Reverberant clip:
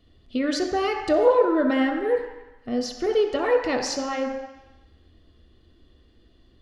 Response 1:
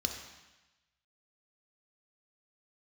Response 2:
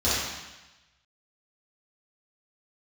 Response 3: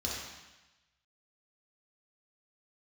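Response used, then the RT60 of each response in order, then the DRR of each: 1; 1.0, 1.0, 1.0 s; 3.0, -13.5, -5.5 dB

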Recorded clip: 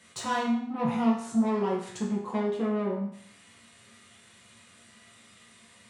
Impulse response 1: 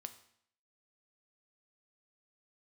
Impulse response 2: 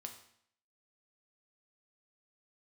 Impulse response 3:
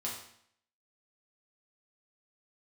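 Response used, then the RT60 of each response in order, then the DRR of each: 3; 0.65, 0.65, 0.65 s; 8.5, 3.5, -4.5 dB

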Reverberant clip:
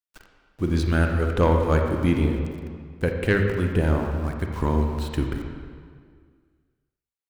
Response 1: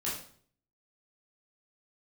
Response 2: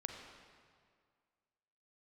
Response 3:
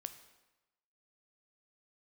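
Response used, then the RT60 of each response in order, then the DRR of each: 2; 0.55, 2.0, 1.0 s; -7.5, 3.0, 9.5 dB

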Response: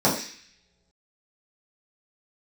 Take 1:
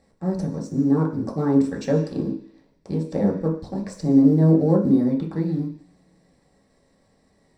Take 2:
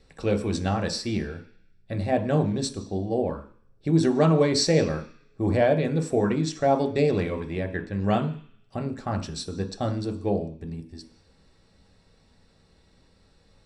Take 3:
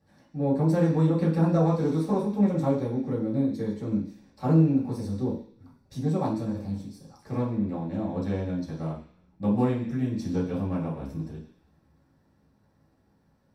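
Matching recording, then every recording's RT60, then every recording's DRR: 3; not exponential, not exponential, not exponential; -2.0, 4.5, -8.5 dB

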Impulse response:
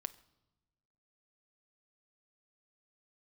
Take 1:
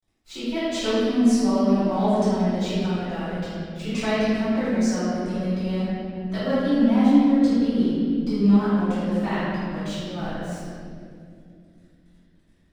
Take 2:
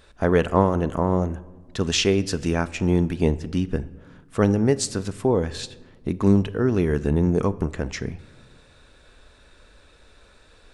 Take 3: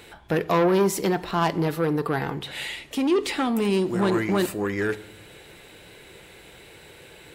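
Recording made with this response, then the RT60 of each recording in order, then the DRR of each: 3; 2.4 s, 1.5 s, not exponential; -15.0, 14.0, 12.0 dB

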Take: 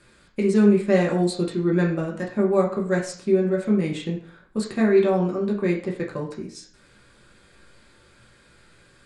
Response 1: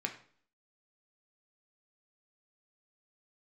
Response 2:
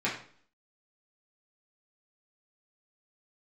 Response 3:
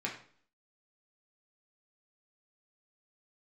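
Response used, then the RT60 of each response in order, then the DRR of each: 3; 0.50, 0.50, 0.50 s; 3.0, -7.5, -3.0 dB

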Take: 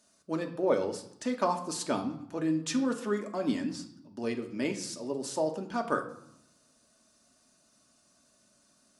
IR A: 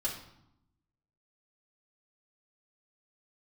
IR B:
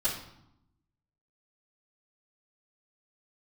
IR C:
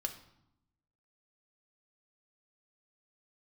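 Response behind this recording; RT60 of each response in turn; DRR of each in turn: C; 0.80, 0.80, 0.80 s; -6.5, -16.0, 3.5 dB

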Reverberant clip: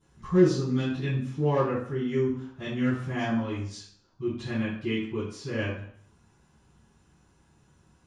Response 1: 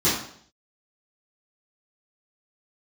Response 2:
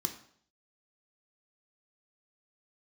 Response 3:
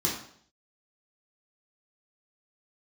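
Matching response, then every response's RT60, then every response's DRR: 1; 0.60, 0.60, 0.60 s; -13.5, 4.5, -5.0 dB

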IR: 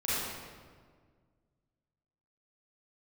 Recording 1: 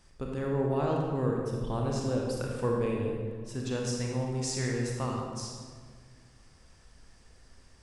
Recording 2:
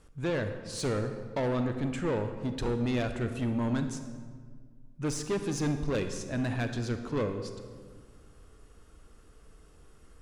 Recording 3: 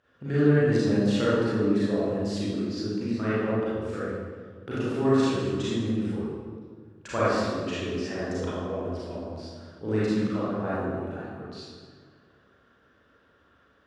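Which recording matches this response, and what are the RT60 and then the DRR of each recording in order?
3; 1.7, 1.8, 1.7 s; -1.5, 7.0, -11.0 dB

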